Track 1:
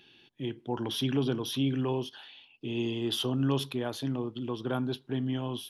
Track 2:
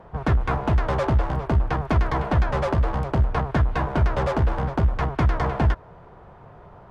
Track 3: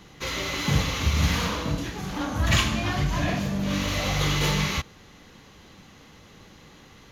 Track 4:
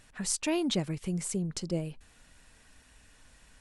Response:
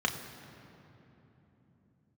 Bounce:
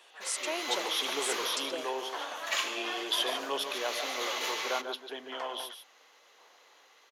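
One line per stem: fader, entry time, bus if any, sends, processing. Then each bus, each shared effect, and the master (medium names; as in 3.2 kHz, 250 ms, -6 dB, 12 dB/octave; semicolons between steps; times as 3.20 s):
-2.0 dB, 0.00 s, no send, echo send -8 dB, none
-16.0 dB, 0.00 s, no send, no echo send, tilt EQ +2 dB/octave; sawtooth tremolo in dB decaying 0.94 Hz, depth 28 dB
-11.5 dB, 0.00 s, no send, echo send -19 dB, none
-4.0 dB, 0.00 s, no send, no echo send, none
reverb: none
echo: delay 145 ms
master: high-pass 490 Hz 24 dB/octave; level rider gain up to 4.5 dB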